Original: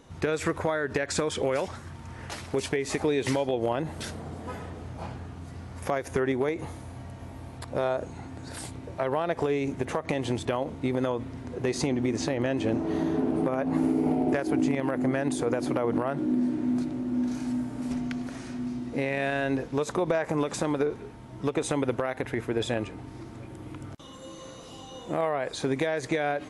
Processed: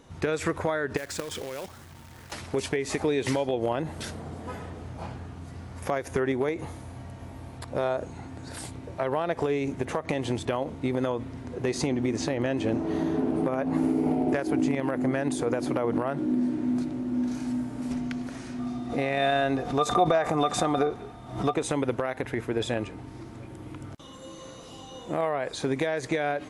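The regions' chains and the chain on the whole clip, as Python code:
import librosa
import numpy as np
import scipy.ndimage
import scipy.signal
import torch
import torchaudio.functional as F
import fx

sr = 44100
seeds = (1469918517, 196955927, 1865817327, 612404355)

y = fx.chain(x, sr, fx.level_steps(step_db=12),
    fx.quant_companded(bits=4), at=(0.97, 2.32))
y = fx.chain(y, sr, fx.small_body(hz=(730.0, 1200.0, 3600.0), ring_ms=90, db=18),
    fx.pre_swell(db_per_s=100.0), at=(18.58, 21.54))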